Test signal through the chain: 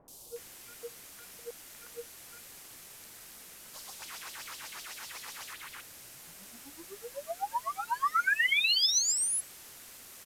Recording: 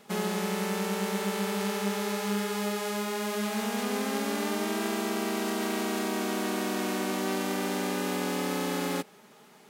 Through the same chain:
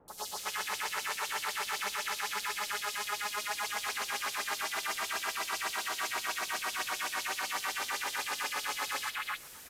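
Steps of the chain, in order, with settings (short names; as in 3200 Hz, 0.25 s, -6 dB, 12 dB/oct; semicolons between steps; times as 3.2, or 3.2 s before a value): high shelf 6400 Hz -4 dB; in parallel at -11 dB: soft clip -36 dBFS; on the sum: LFO high-pass sine 7.9 Hz 940–5300 Hz; requantised 8-bit, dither triangular; three bands offset in time lows, highs, mids 80/360 ms, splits 940/3700 Hz; downsampling 32000 Hz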